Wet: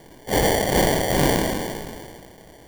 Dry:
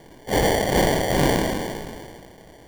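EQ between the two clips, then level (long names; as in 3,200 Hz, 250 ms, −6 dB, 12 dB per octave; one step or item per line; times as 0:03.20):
high-shelf EQ 7,600 Hz +6 dB
0.0 dB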